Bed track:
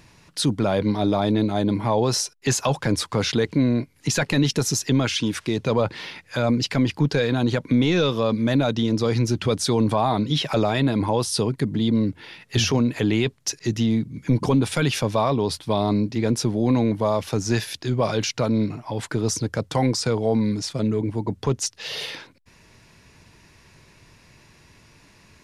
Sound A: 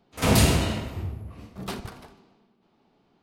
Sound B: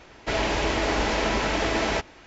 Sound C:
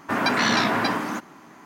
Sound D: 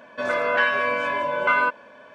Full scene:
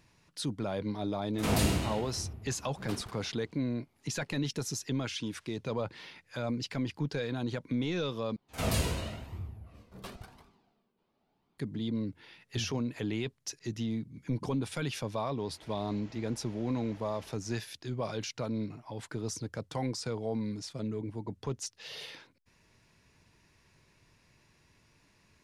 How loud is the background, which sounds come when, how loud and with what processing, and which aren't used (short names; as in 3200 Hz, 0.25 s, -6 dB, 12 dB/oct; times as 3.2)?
bed track -13 dB
1.21 add A -9 dB
8.36 replace with A -6.5 dB + flange 0.95 Hz, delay 0.8 ms, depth 1.3 ms, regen +47%
15.35 add B -13 dB, fades 0.05 s + compressor 4:1, threshold -43 dBFS
not used: C, D